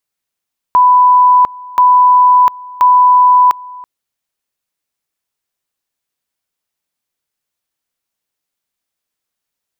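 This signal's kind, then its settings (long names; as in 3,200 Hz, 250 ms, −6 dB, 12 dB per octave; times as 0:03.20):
tone at two levels in turn 995 Hz −4 dBFS, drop 23 dB, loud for 0.70 s, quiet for 0.33 s, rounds 3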